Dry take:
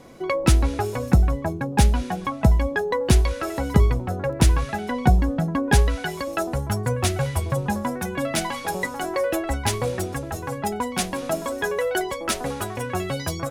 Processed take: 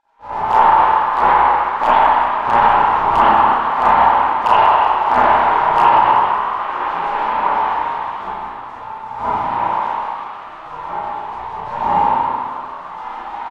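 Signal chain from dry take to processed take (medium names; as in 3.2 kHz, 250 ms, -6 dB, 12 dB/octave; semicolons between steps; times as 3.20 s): square wave that keeps the level; spectral gate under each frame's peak -30 dB weak; transient shaper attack -10 dB, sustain +2 dB; resonant low-pass 900 Hz, resonance Q 6.4; hard clipper -19.5 dBFS, distortion -17 dB; doubling 33 ms -4 dB; frequency-shifting echo 188 ms, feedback 62%, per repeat +65 Hz, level -10 dB; reverberation RT60 1.5 s, pre-delay 52 ms, DRR -10 dB; loudness maximiser +11 dB; trim -1 dB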